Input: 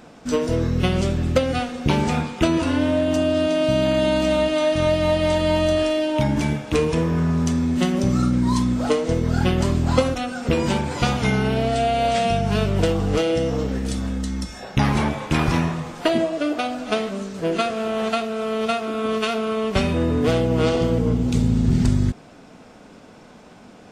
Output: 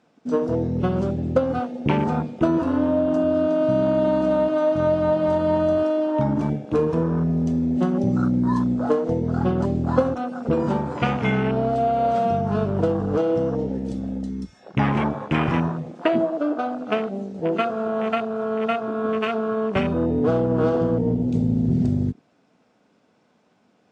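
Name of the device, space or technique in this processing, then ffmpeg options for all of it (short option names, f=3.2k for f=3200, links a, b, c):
over-cleaned archive recording: -af "highpass=120,lowpass=7.5k,afwtdn=0.0447"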